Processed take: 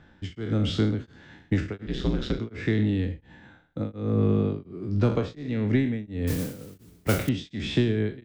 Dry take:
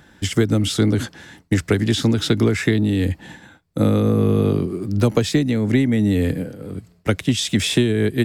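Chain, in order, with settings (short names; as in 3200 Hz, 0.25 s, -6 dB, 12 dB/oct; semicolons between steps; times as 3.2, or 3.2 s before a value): spectral trails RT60 0.49 s; air absorption 180 m; echo 0.102 s -16 dB; 1.86–2.39 ring modulator 65 Hz; 6.27–7.29 modulation noise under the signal 11 dB; low shelf 74 Hz +7 dB; beating tremolo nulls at 1.4 Hz; gain -6.5 dB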